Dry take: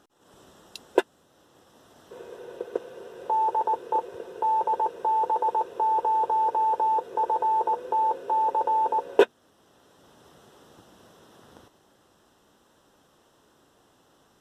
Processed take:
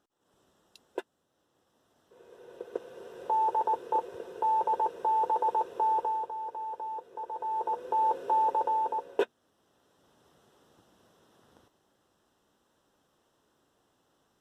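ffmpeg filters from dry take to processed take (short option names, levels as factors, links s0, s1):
-af "volume=2.99,afade=t=in:st=2.14:d=1.01:silence=0.251189,afade=t=out:st=5.9:d=0.41:silence=0.298538,afade=t=in:st=7.3:d=0.95:silence=0.237137,afade=t=out:st=8.25:d=0.91:silence=0.354813"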